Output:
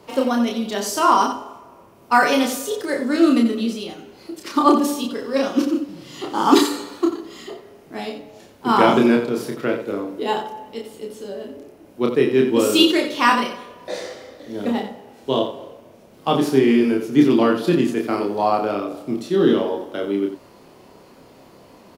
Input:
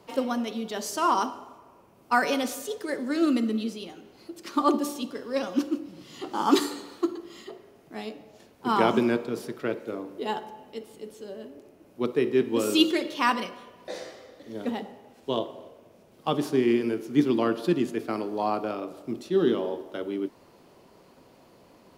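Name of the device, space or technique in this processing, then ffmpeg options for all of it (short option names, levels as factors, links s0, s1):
slapback doubling: -filter_complex "[0:a]asplit=3[s0][s1][s2];[s1]adelay=30,volume=0.708[s3];[s2]adelay=89,volume=0.355[s4];[s0][s3][s4]amix=inputs=3:normalize=0,volume=2"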